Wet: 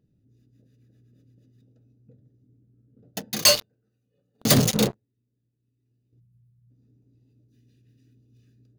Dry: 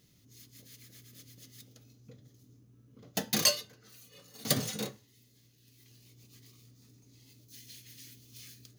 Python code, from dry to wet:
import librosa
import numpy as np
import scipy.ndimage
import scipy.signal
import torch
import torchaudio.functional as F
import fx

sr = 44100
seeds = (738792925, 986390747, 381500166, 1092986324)

y = fx.wiener(x, sr, points=41)
y = fx.leveller(y, sr, passes=5, at=(3.45, 6.13))
y = fx.spec_box(y, sr, start_s=6.19, length_s=0.51, low_hz=210.0, high_hz=8300.0, gain_db=-22)